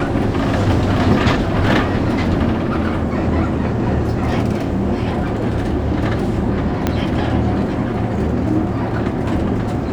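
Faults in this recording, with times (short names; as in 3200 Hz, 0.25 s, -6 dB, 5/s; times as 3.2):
6.87 pop -3 dBFS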